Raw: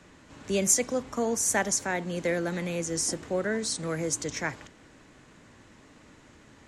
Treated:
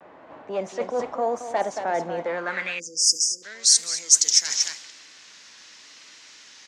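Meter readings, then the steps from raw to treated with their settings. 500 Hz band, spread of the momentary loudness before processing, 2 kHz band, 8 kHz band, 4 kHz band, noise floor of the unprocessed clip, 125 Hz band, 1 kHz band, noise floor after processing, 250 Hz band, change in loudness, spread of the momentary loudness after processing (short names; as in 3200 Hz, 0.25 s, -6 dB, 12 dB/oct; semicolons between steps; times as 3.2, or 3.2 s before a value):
+1.5 dB, 9 LU, +1.0 dB, +8.0 dB, +14.0 dB, -55 dBFS, -11.0 dB, +6.5 dB, -49 dBFS, -7.5 dB, +6.5 dB, 12 LU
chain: in parallel at -5 dB: sine folder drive 11 dB, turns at -10 dBFS; on the sum: echo 0.229 s -11 dB; bit-crush 8-bit; reverse; compressor 16:1, threshold -25 dBFS, peak gain reduction 12.5 dB; reverse; vibrato 0.86 Hz 62 cents; AGC gain up to 7 dB; high shelf 3800 Hz +10 dB; band-pass sweep 710 Hz -> 5600 Hz, 2.23–3.18; spectral delete 2.79–3.43, 530–4700 Hz; low-pass opened by the level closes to 2600 Hz, open at -18.5 dBFS; gain +3 dB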